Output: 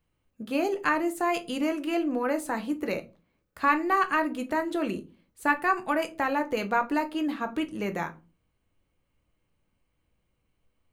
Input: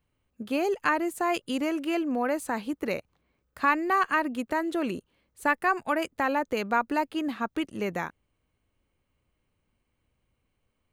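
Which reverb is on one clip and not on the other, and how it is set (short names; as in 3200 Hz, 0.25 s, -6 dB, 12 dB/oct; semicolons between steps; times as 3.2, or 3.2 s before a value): shoebox room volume 120 m³, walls furnished, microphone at 0.66 m; gain -1 dB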